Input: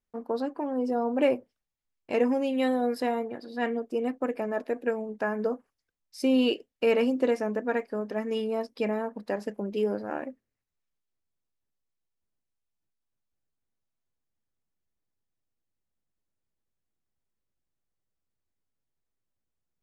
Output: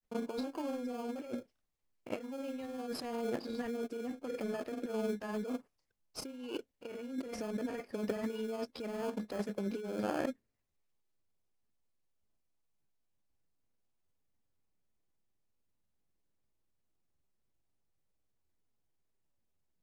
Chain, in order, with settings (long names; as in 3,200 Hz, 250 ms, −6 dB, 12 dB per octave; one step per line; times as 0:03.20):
in parallel at −6 dB: sample-rate reduction 1,900 Hz, jitter 0%
on the sum: compressor whose output falls as the input rises −32 dBFS, ratio −1
granular cloud, grains 20 per second, spray 28 ms, pitch spread up and down by 0 semitones
level −5.5 dB